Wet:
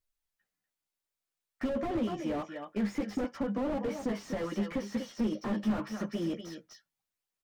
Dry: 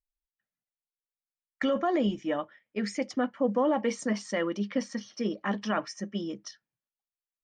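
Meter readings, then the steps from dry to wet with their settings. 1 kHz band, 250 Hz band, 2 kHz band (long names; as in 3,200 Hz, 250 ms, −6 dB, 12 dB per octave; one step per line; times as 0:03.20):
−7.0 dB, −2.0 dB, −7.5 dB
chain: downward compressor 12 to 1, threshold −30 dBFS, peak gain reduction 10 dB
multi-voice chorus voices 2, 0.27 Hz, delay 12 ms, depth 1.7 ms
on a send: single-tap delay 243 ms −11.5 dB
on the sum: slew-rate limiting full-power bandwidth 5.7 Hz
level +8.5 dB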